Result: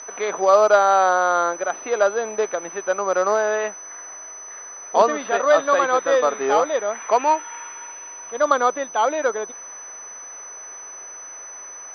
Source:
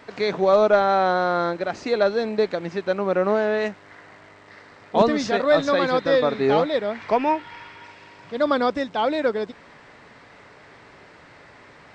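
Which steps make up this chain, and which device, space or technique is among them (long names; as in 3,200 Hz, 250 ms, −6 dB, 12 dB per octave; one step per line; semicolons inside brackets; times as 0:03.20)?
toy sound module (linearly interpolated sample-rate reduction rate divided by 4×; switching amplifier with a slow clock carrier 6,000 Hz; loudspeaker in its box 570–4,600 Hz, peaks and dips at 1,200 Hz +4 dB, 2,000 Hz −4 dB, 3,400 Hz +3 dB)
level +4.5 dB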